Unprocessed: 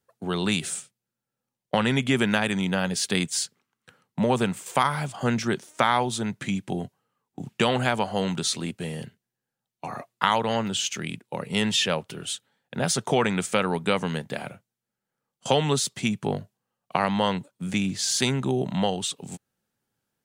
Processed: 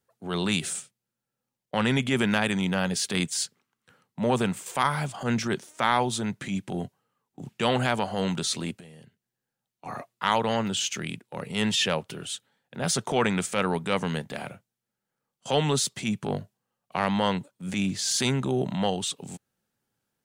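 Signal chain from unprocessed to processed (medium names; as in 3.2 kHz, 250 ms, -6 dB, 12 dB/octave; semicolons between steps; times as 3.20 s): transient shaper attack -8 dB, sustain 0 dB; 8.76–9.86 s: compression 20:1, threshold -45 dBFS, peak gain reduction 16 dB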